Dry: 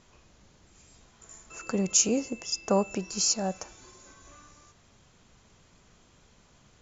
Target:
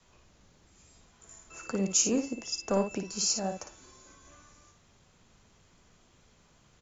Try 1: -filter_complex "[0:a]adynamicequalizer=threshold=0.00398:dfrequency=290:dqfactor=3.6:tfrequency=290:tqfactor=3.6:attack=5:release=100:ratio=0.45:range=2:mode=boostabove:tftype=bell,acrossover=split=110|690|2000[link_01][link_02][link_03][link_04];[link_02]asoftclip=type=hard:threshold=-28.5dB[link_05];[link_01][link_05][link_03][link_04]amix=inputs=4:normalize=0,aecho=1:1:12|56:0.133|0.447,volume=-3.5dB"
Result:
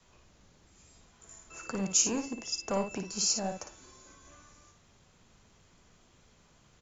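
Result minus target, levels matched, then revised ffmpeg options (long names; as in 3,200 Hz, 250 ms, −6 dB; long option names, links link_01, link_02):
hard clipping: distortion +11 dB
-filter_complex "[0:a]adynamicequalizer=threshold=0.00398:dfrequency=290:dqfactor=3.6:tfrequency=290:tqfactor=3.6:attack=5:release=100:ratio=0.45:range=2:mode=boostabove:tftype=bell,acrossover=split=110|690|2000[link_01][link_02][link_03][link_04];[link_02]asoftclip=type=hard:threshold=-20.5dB[link_05];[link_01][link_05][link_03][link_04]amix=inputs=4:normalize=0,aecho=1:1:12|56:0.133|0.447,volume=-3.5dB"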